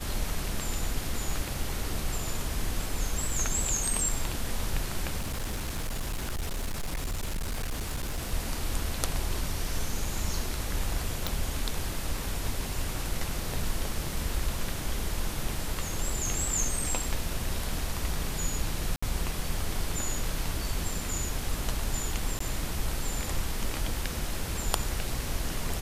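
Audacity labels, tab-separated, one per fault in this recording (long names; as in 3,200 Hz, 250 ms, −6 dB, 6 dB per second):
5.180000	8.340000	clipping −28 dBFS
11.270000	11.270000	click
18.960000	19.020000	drop-out 65 ms
22.390000	22.400000	drop-out 14 ms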